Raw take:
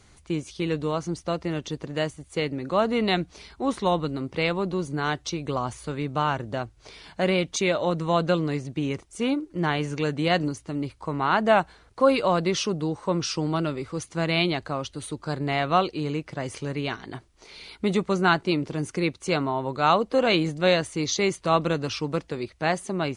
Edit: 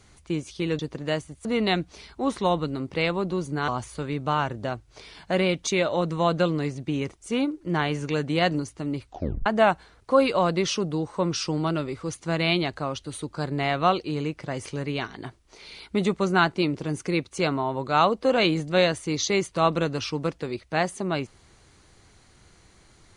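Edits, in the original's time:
0.79–1.68 s: delete
2.34–2.86 s: delete
5.09–5.57 s: delete
10.94 s: tape stop 0.41 s

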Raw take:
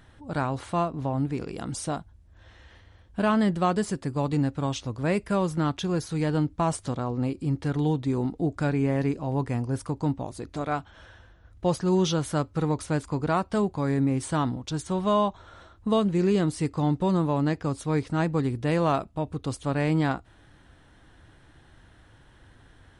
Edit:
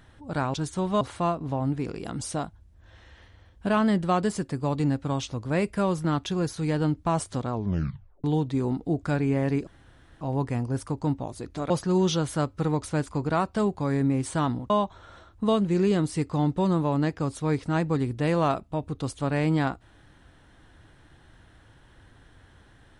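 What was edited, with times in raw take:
7.05 s: tape stop 0.72 s
9.20 s: insert room tone 0.54 s
10.69–11.67 s: delete
14.67–15.14 s: move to 0.54 s

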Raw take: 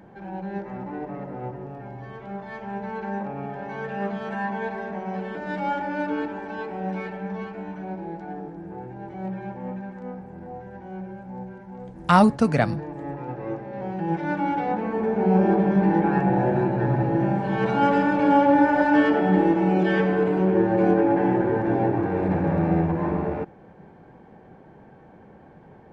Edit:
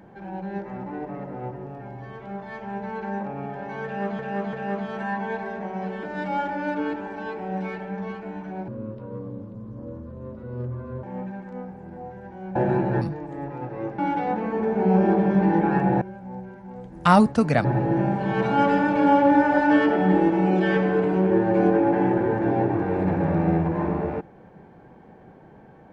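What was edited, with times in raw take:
3.85–4.19 s: loop, 3 plays
8.00–9.53 s: speed 65%
11.05–12.68 s: swap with 16.42–16.88 s
13.65–14.39 s: delete

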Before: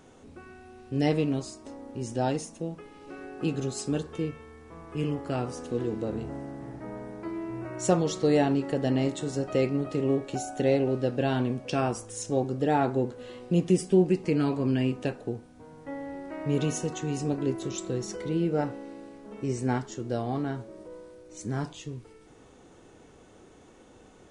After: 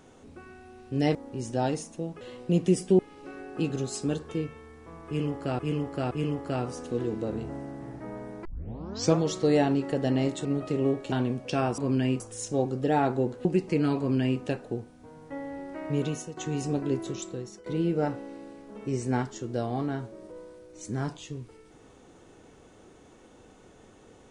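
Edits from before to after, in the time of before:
1.15–1.77 s: delete
4.91–5.43 s: loop, 3 plays
7.25 s: tape start 0.74 s
9.25–9.69 s: delete
10.36–11.32 s: delete
13.23–14.01 s: move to 2.83 s
14.54–14.96 s: copy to 11.98 s
16.46–16.93 s: fade out, to -13 dB
17.59–18.22 s: fade out, to -16.5 dB

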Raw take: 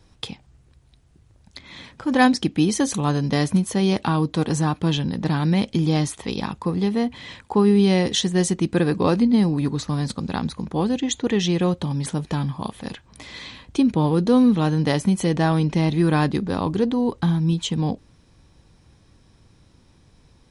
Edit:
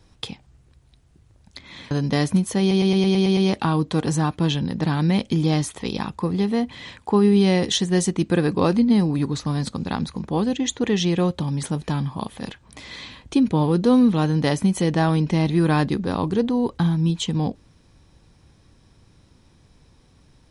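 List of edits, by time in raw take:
1.91–3.11 s: delete
3.80 s: stutter 0.11 s, 8 plays

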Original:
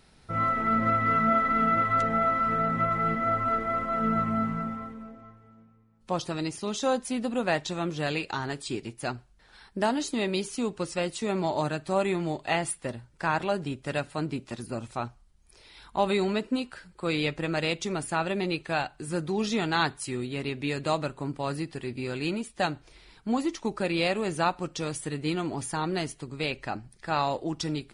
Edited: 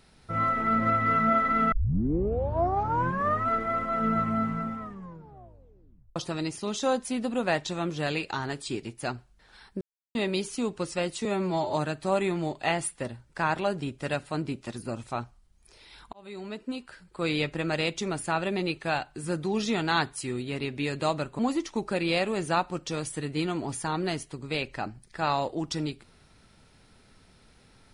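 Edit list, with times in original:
1.72 s: tape start 1.75 s
4.79 s: tape stop 1.37 s
9.81–10.15 s: mute
11.25–11.57 s: stretch 1.5×
15.97–17.13 s: fade in
21.23–23.28 s: delete

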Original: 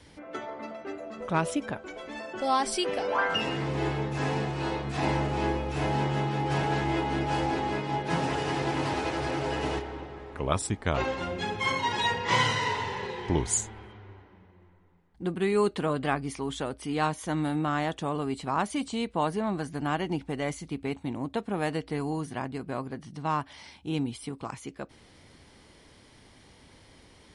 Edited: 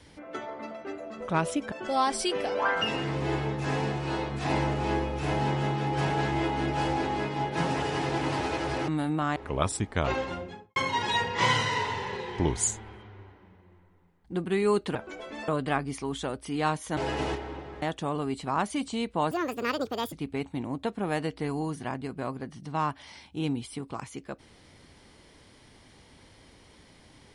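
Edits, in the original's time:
1.72–2.25 s: move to 15.85 s
9.41–10.26 s: swap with 17.34–17.82 s
11.08–11.66 s: studio fade out
19.31–20.63 s: speed 162%

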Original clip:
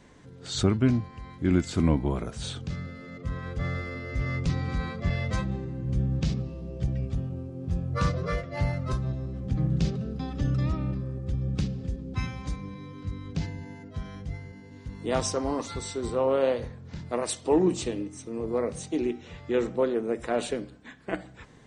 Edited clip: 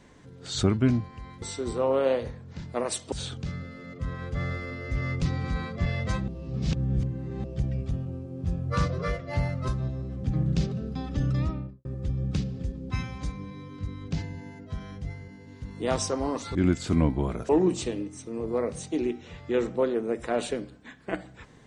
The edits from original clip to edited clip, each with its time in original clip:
1.42–2.36 s: swap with 15.79–17.49 s
5.52–6.68 s: reverse
10.65–11.09 s: studio fade out

